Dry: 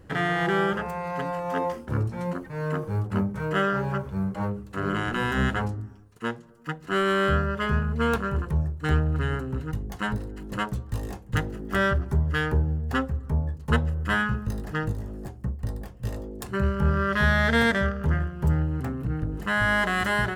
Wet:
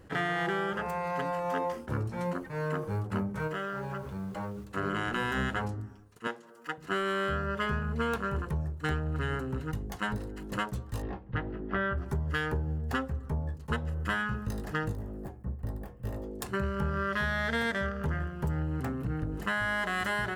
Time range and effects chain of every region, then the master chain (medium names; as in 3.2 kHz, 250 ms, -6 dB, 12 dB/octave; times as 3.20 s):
3.47–4.64 s: compression 4:1, threshold -31 dBFS + added noise pink -63 dBFS
6.27–6.78 s: high-pass 330 Hz + upward compressor, threshold -45 dBFS
11.02–11.98 s: Gaussian low-pass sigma 2.9 samples + doubling 16 ms -11.5 dB
14.95–16.23 s: peaking EQ 5.5 kHz -12 dB 2.6 oct + de-hum 120.2 Hz, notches 21
whole clip: bass shelf 240 Hz -5 dB; compression, threshold -27 dBFS; attacks held to a fixed rise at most 450 dB/s